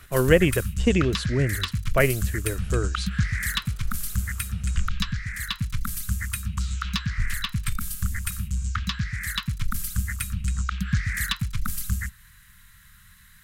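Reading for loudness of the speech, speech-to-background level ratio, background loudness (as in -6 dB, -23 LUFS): -24.5 LUFS, 4.5 dB, -29.0 LUFS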